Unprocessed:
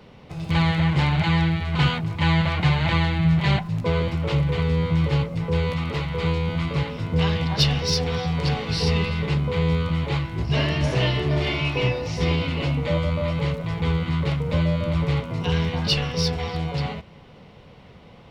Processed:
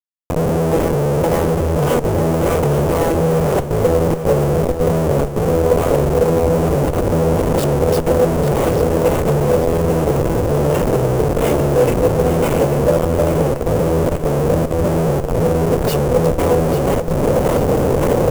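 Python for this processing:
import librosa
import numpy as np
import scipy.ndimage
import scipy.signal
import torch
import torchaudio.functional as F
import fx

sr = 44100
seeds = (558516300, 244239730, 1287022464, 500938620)

y = fx.recorder_agc(x, sr, target_db=-14.5, rise_db_per_s=49.0, max_gain_db=30)
y = scipy.signal.sosfilt(scipy.signal.butter(4, 5200.0, 'lowpass', fs=sr, output='sos'), y)
y = fx.hum_notches(y, sr, base_hz=60, count=7)
y = fx.fold_sine(y, sr, drive_db=7, ceiling_db=-9.5)
y = fx.harmonic_tremolo(y, sr, hz=1.8, depth_pct=100, crossover_hz=1000.0)
y = fx.schmitt(y, sr, flips_db=-20.5)
y = fx.graphic_eq(y, sr, hz=(500, 2000, 4000), db=(12, -5, -9))
y = fx.echo_feedback(y, sr, ms=843, feedback_pct=44, wet_db=-9.5)
y = F.gain(torch.from_numpy(y), -1.0).numpy()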